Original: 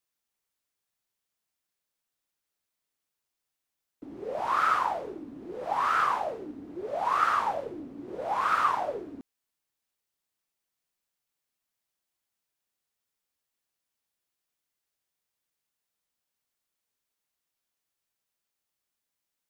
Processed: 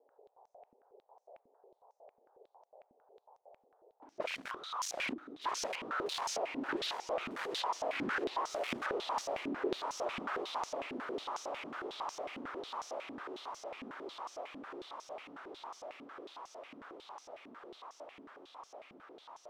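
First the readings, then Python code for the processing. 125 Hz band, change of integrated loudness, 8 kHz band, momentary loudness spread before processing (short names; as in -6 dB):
-4.0 dB, -12.0 dB, n/a, 16 LU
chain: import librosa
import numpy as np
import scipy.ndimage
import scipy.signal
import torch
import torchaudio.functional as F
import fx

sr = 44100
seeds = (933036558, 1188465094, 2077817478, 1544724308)

p1 = fx.peak_eq(x, sr, hz=1900.0, db=-11.0, octaves=0.87)
p2 = fx.leveller(p1, sr, passes=5)
p3 = fx.step_gate(p2, sr, bpm=193, pattern='xx....xx', floor_db=-24.0, edge_ms=4.5)
p4 = np.clip(10.0 ** (23.0 / 20.0) * p3, -1.0, 1.0) / 10.0 ** (23.0 / 20.0)
p5 = p4 + fx.echo_diffused(p4, sr, ms=1617, feedback_pct=70, wet_db=-14.0, dry=0)
p6 = fx.dmg_noise_band(p5, sr, seeds[0], low_hz=410.0, high_hz=850.0, level_db=-63.0)
p7 = 10.0 ** (-29.0 / 20.0) * (np.abs((p6 / 10.0 ** (-29.0 / 20.0) + 3.0) % 4.0 - 2.0) - 1.0)
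p8 = fx.echo_wet_highpass(p7, sr, ms=596, feedback_pct=82, hz=1600.0, wet_db=-14.0)
p9 = fx.filter_held_bandpass(p8, sr, hz=11.0, low_hz=250.0, high_hz=5900.0)
y = p9 * 10.0 ** (10.5 / 20.0)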